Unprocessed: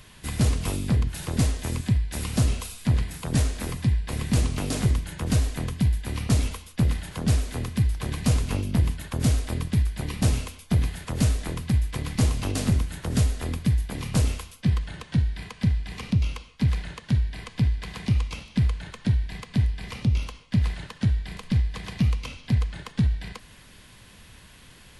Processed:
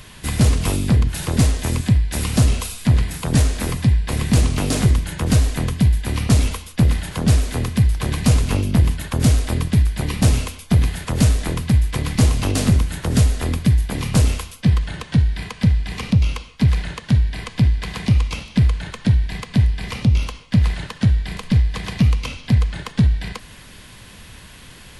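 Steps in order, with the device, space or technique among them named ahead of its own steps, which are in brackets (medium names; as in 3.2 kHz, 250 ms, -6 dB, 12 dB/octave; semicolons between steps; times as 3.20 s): parallel distortion (in parallel at -10.5 dB: hard clipper -26 dBFS, distortion -6 dB); on the sum: trim +6 dB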